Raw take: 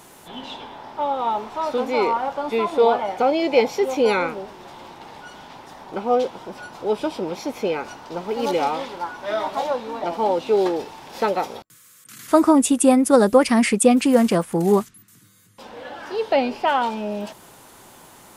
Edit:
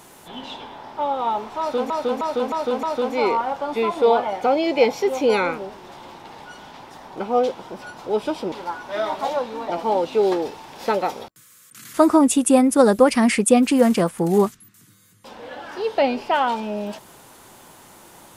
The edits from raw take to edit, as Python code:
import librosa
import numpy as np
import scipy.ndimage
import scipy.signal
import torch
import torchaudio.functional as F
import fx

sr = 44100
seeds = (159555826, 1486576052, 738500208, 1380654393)

y = fx.edit(x, sr, fx.repeat(start_s=1.59, length_s=0.31, count=5),
    fx.cut(start_s=7.28, length_s=1.58), tone=tone)